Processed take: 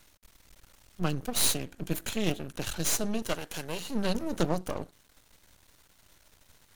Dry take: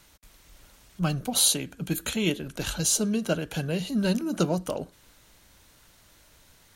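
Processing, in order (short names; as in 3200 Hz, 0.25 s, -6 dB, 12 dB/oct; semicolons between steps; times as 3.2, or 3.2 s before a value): 3.22–3.87 tone controls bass -13 dB, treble +6 dB; half-wave rectifier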